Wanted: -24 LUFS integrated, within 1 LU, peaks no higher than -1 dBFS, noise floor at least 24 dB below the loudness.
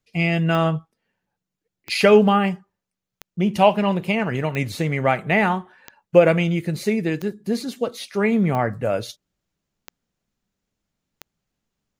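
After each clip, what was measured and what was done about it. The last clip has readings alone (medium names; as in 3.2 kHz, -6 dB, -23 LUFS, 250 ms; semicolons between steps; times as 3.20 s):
clicks found 9; loudness -20.5 LUFS; peak level -1.5 dBFS; loudness target -24.0 LUFS
-> de-click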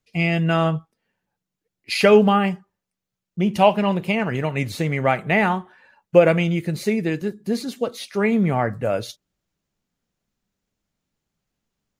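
clicks found 0; loudness -20.5 LUFS; peak level -1.5 dBFS; loudness target -24.0 LUFS
-> trim -3.5 dB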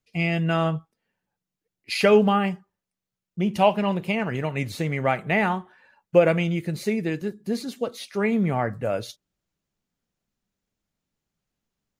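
loudness -24.0 LUFS; peak level -5.0 dBFS; noise floor -87 dBFS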